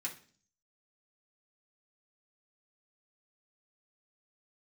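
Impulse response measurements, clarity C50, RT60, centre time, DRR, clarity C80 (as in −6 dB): 11.5 dB, 0.45 s, 14 ms, −3.5 dB, 17.0 dB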